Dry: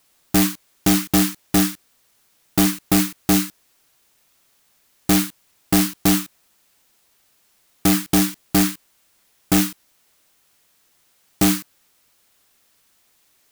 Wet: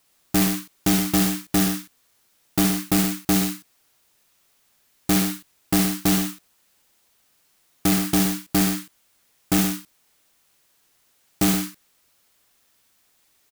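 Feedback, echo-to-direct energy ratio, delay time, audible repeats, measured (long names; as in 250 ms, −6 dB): repeats not evenly spaced, −4.5 dB, 68 ms, 2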